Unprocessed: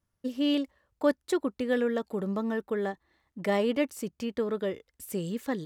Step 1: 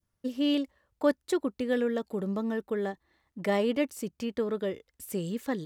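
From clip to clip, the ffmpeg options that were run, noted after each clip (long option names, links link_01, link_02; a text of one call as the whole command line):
ffmpeg -i in.wav -af "adynamicequalizer=threshold=0.00708:dfrequency=1200:dqfactor=0.77:tfrequency=1200:tqfactor=0.77:attack=5:release=100:ratio=0.375:range=2:mode=cutabove:tftype=bell" out.wav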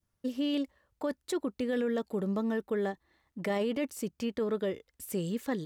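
ffmpeg -i in.wav -af "alimiter=limit=-23.5dB:level=0:latency=1:release=13" out.wav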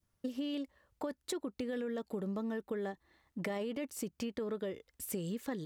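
ffmpeg -i in.wav -af "acompressor=threshold=-36dB:ratio=6,volume=1dB" out.wav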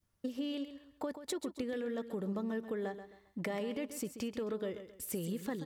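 ffmpeg -i in.wav -af "aecho=1:1:133|266|399:0.282|0.0874|0.0271" out.wav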